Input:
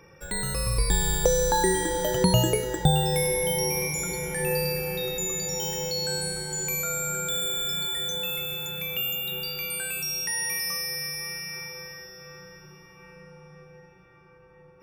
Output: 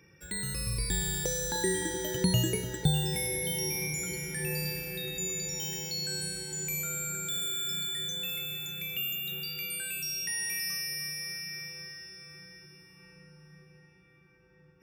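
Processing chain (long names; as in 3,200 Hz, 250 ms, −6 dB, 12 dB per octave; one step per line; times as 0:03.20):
high-pass filter 58 Hz
flat-topped bell 780 Hz −10.5 dB
delay that swaps between a low-pass and a high-pass 300 ms, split 1,500 Hz, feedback 62%, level −11 dB
level −4.5 dB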